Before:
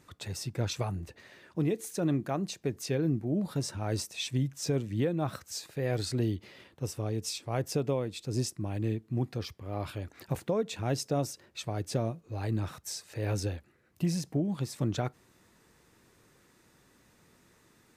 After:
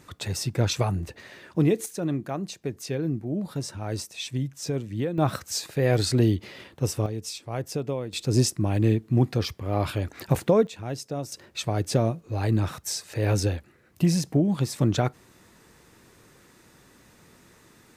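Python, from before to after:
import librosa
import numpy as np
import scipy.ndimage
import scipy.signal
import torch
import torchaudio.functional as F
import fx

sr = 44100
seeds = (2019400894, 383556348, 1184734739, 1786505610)

y = fx.gain(x, sr, db=fx.steps((0.0, 8.0), (1.86, 1.0), (5.18, 9.0), (7.06, 0.5), (8.13, 10.0), (10.67, -2.0), (11.32, 8.0)))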